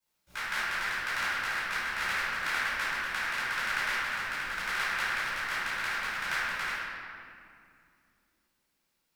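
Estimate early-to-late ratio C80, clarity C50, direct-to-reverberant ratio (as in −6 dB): −2.5 dB, −5.5 dB, −16.0 dB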